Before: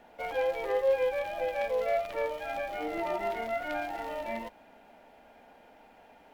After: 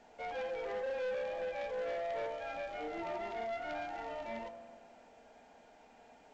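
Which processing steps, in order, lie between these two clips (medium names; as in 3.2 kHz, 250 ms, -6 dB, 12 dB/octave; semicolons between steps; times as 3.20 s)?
on a send at -6 dB: low-pass 2 kHz 12 dB/octave + reverberation RT60 1.6 s, pre-delay 3 ms; on the sum: saturation -28.5 dBFS, distortion -11 dB; trim -5.5 dB; A-law 128 kbps 16 kHz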